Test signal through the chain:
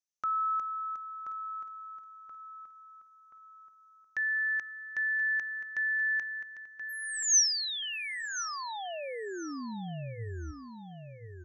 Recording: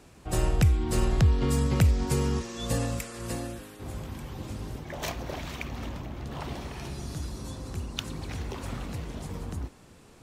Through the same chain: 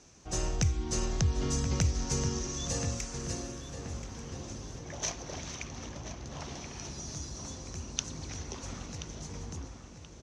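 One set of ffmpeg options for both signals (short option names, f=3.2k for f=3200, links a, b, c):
-filter_complex "[0:a]lowpass=f=6.1k:t=q:w=8.3,bandreject=f=60:t=h:w=6,bandreject=f=120:t=h:w=6,asplit=2[a][b];[b]adelay=1029,lowpass=f=3.1k:p=1,volume=-8dB,asplit=2[c][d];[d]adelay=1029,lowpass=f=3.1k:p=1,volume=0.47,asplit=2[e][f];[f]adelay=1029,lowpass=f=3.1k:p=1,volume=0.47,asplit=2[g][h];[h]adelay=1029,lowpass=f=3.1k:p=1,volume=0.47,asplit=2[i][j];[j]adelay=1029,lowpass=f=3.1k:p=1,volume=0.47[k];[a][c][e][g][i][k]amix=inputs=6:normalize=0,volume=-6.5dB"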